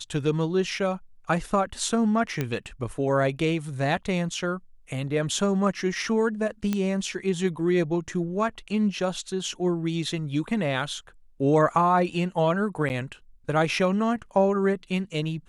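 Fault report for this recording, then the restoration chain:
2.41 s: pop -13 dBFS
6.73 s: pop -13 dBFS
12.89–12.90 s: dropout 9.3 ms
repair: de-click; interpolate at 12.89 s, 9.3 ms

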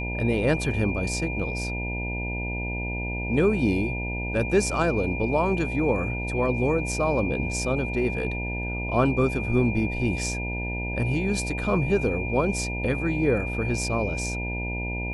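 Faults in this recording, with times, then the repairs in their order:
buzz 60 Hz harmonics 16 -31 dBFS
whine 2.4 kHz -32 dBFS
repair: band-stop 2.4 kHz, Q 30; de-hum 60 Hz, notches 16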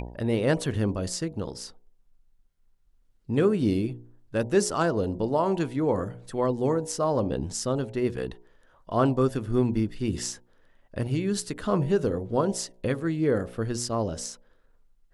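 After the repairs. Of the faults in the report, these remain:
nothing left

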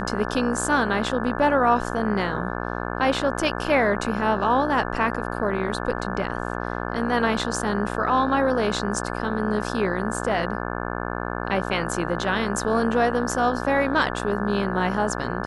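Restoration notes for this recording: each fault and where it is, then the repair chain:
buzz 60 Hz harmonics 29 -29 dBFS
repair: de-hum 60 Hz, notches 29

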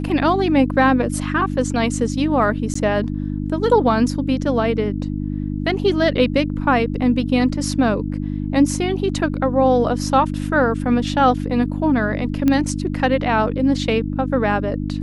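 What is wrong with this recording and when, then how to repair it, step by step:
hum 50 Hz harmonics 6 -24 dBFS
2.74–2.75 s: dropout 14 ms
12.48 s: pop -7 dBFS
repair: de-click; de-hum 50 Hz, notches 6; interpolate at 2.74 s, 14 ms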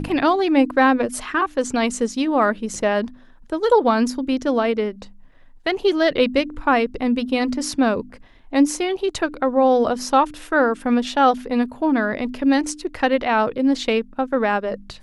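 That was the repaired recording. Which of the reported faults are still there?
nothing left

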